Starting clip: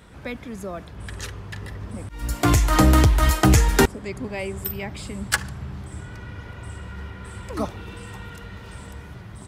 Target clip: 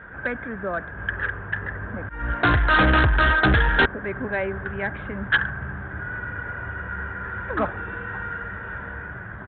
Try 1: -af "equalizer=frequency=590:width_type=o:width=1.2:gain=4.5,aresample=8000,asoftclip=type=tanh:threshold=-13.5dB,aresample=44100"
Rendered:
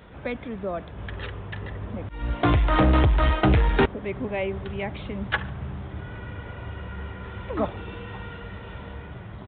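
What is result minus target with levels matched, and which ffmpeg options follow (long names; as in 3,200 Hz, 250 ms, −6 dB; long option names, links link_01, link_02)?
2,000 Hz band −9.0 dB
-af "lowpass=frequency=1600:width_type=q:width=13,equalizer=frequency=590:width_type=o:width=1.2:gain=4.5,aresample=8000,asoftclip=type=tanh:threshold=-13.5dB,aresample=44100"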